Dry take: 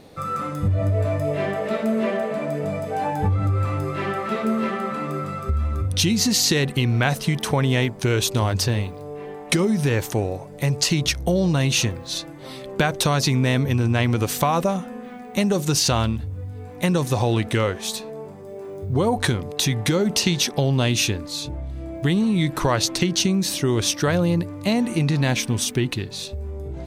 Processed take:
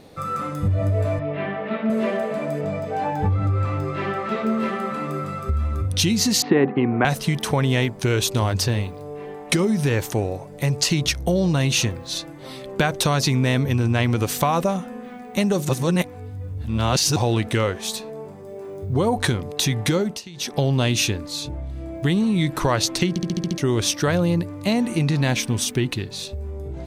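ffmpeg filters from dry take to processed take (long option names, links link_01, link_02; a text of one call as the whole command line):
ffmpeg -i in.wav -filter_complex "[0:a]asettb=1/sr,asplit=3[link_01][link_02][link_03];[link_01]atrim=end=1.194[link_04];[link_02]atrim=start=1.19:end=1.9,asetpts=PTS-STARTPTS,afade=type=in:duration=0.004:curve=qsin,afade=type=out:start_time=0.706:duration=0.004:curve=qsin,highpass=140,equalizer=frequency=230:width_type=q:width=4:gain=3,equalizer=frequency=380:width_type=q:width=4:gain=-4,equalizer=frequency=550:width_type=q:width=4:gain=-9,lowpass=frequency=3300:width=0.5412,lowpass=frequency=3300:width=1.3066[link_05];[link_03]atrim=start=1.896[link_06];[link_04][link_05]acrossfade=duration=0.004:curve1=hsin:curve2=qsin[link_07];[link_07][link_06]acrossfade=duration=0.004:curve1=qsin:curve2=hsin,asettb=1/sr,asplit=3[link_08][link_09][link_10];[link_08]atrim=end=2.614[link_11];[link_09]atrim=start=2.61:end=4.6,asetpts=PTS-STARTPTS,afade=type=in:duration=0.004:curve=qsin,afade=type=out:start_time=1.986:duration=0.004:curve=qsin,equalizer=frequency=11000:width_type=o:width=0.85:gain=-12[link_12];[link_10]atrim=start=4.596[link_13];[link_11][link_12]acrossfade=duration=0.004:curve1=hsin:curve2=qsin[link_14];[link_14][link_13]acrossfade=duration=0.004:curve1=qsin:curve2=hsin,asettb=1/sr,asplit=3[link_15][link_16][link_17];[link_15]atrim=end=6.424[link_18];[link_16]atrim=start=6.42:end=7.05,asetpts=PTS-STARTPTS,afade=type=in:duration=0.004:curve=qsin,afade=type=out:start_time=0.626:duration=0.004:curve=qsin,highpass=180,equalizer=frequency=200:width_type=q:width=4:gain=5,equalizer=frequency=280:width_type=q:width=4:gain=8,equalizer=frequency=400:width_type=q:width=4:gain=7,equalizer=frequency=760:width_type=q:width=4:gain=9,equalizer=frequency=1100:width_type=q:width=4:gain=5,lowpass=frequency=2100:width=0.5412,lowpass=frequency=2100:width=1.3066[link_19];[link_17]atrim=start=7.046[link_20];[link_18][link_19]acrossfade=duration=0.004:curve1=hsin:curve2=qsin[link_21];[link_21][link_20]acrossfade=duration=0.004:curve1=qsin:curve2=hsin,asplit=12[link_22][link_23][link_24][link_25][link_26][link_27][link_28][link_29][link_30][link_31][link_32][link_33];[link_22]atrim=end=15.692[link_34];[link_23]atrim=start=15.688:end=17.162,asetpts=PTS-STARTPTS,areverse[link_35];[link_24]atrim=start=17.158:end=20.22,asetpts=PTS-STARTPTS,afade=type=out:start_time=2.812:duration=0.25:silence=0.105925[link_36];[link_25]atrim=start=20.22:end=20.33,asetpts=PTS-STARTPTS,volume=-19.5dB[link_37];[link_26]atrim=start=20.33:end=23.162,asetpts=PTS-STARTPTS,afade=type=in:duration=0.25:silence=0.105925[link_38];[link_27]atrim=start=23.088:end=23.162[link_39];[link_28]atrim=start=23.088:end=23.162[link_40];[link_29]atrim=start=23.088:end=23.162[link_41];[link_30]atrim=start=23.088:end=23.162[link_42];[link_31]atrim=start=23.088:end=23.162[link_43];[link_32]atrim=start=23.088:end=23.162[link_44];[link_33]atrim=start=23.578[link_45];[link_34][link_35]acrossfade=duration=0.004:curve1=hsin:curve2=hsin[link_46];[link_36][link_37][link_38]concat=n=3:v=0:a=1[link_47];[link_46][link_47]acrossfade=duration=0.004:curve1=hsin:curve2=hsin[link_48];[link_48][link_39]acrossfade=duration=0.004:curve1=hsin:curve2=hsin[link_49];[link_49][link_40]acrossfade=duration=0.004:curve1=hsin:curve2=hsin[link_50];[link_50][link_41]acrossfade=duration=0.004:curve1=hsin:curve2=hsin[link_51];[link_51][link_42]acrossfade=duration=0.004:curve1=hsin:curve2=hsin[link_52];[link_52][link_43]acrossfade=duration=0.004:curve1=hsin:curve2=hsin[link_53];[link_53][link_44]acrossfade=duration=0.004:curve1=hsin:curve2=hsin[link_54];[link_54][link_45]acrossfade=duration=0.004:curve1=hsin:curve2=hsin" out.wav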